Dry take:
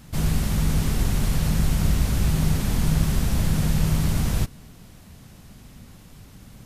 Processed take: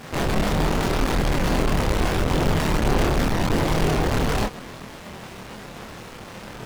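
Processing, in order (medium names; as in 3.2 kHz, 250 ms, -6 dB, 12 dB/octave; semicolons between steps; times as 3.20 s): square wave that keeps the level; overdrive pedal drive 22 dB, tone 3.6 kHz, clips at -7.5 dBFS; chorus voices 2, 0.83 Hz, delay 26 ms, depth 3 ms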